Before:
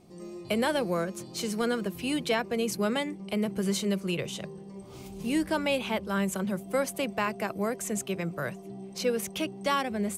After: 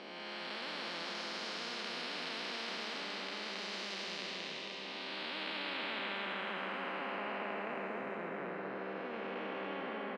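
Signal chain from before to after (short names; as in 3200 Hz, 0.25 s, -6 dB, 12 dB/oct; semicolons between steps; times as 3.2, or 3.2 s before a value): time blur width 0.76 s; steep high-pass 210 Hz 36 dB/oct; tilt -2 dB/oct; band-pass sweep 5300 Hz -> 450 Hz, 4.7–7.99; air absorption 390 m; on a send: loudspeakers at several distances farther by 57 m -9 dB, 93 m -3 dB; on the sum: spectral compressor 4:1; gain +12.5 dB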